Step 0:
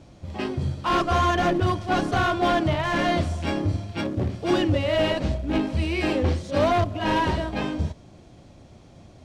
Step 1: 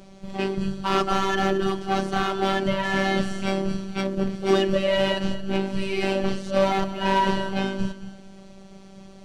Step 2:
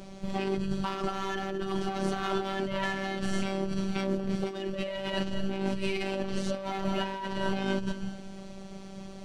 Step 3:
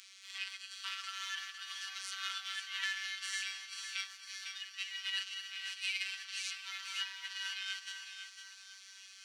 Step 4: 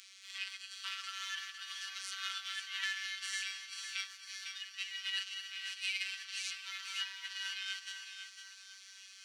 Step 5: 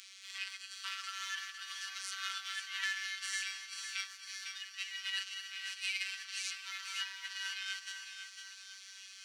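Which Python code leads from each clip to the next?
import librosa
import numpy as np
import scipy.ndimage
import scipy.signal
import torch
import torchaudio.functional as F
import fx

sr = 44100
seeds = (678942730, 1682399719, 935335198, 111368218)

y1 = fx.rider(x, sr, range_db=3, speed_s=2.0)
y1 = fx.robotise(y1, sr, hz=193.0)
y1 = fx.echo_feedback(y1, sr, ms=223, feedback_pct=28, wet_db=-13.5)
y1 = F.gain(torch.from_numpy(y1), 3.0).numpy()
y2 = fx.over_compress(y1, sr, threshold_db=-29.0, ratio=-1.0)
y2 = F.gain(torch.from_numpy(y2), -2.5).numpy()
y3 = scipy.signal.sosfilt(scipy.signal.bessel(8, 2700.0, 'highpass', norm='mag', fs=sr, output='sos'), y2)
y3 = fx.high_shelf(y3, sr, hz=6500.0, db=-4.5)
y3 = fx.echo_feedback(y3, sr, ms=504, feedback_pct=46, wet_db=-8)
y3 = F.gain(torch.from_numpy(y3), 5.0).numpy()
y4 = scipy.signal.sosfilt(scipy.signal.butter(2, 960.0, 'highpass', fs=sr, output='sos'), y3)
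y5 = fx.dynamic_eq(y4, sr, hz=3200.0, q=1.5, threshold_db=-51.0, ratio=4.0, max_db=-4)
y5 = F.gain(torch.from_numpy(y5), 2.5).numpy()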